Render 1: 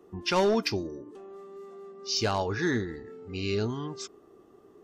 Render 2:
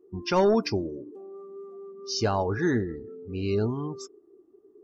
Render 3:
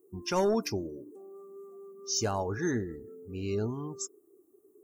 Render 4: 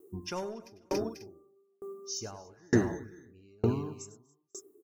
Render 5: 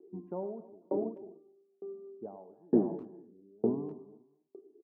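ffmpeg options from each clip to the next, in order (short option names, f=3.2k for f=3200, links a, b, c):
-af "equalizer=f=3.1k:w=0.62:g=-7.5,afftdn=nr=19:nf=-44,volume=3.5dB"
-af "aexciter=amount=13.8:drive=4.6:freq=6.8k,volume=-5.5dB"
-filter_complex "[0:a]asplit=2[a][b];[b]aecho=0:1:44|99|242|282|491|540:0.106|0.316|0.119|0.237|0.211|0.168[c];[a][c]amix=inputs=2:normalize=0,aeval=exprs='val(0)*pow(10,-39*if(lt(mod(1.1*n/s,1),2*abs(1.1)/1000),1-mod(1.1*n/s,1)/(2*abs(1.1)/1000),(mod(1.1*n/s,1)-2*abs(1.1)/1000)/(1-2*abs(1.1)/1000))/20)':c=same,volume=7.5dB"
-filter_complex "[0:a]asuperpass=centerf=370:order=8:qfactor=0.56,asplit=2[a][b];[b]adelay=250,highpass=300,lowpass=3.4k,asoftclip=type=hard:threshold=-23dB,volume=-21dB[c];[a][c]amix=inputs=2:normalize=0"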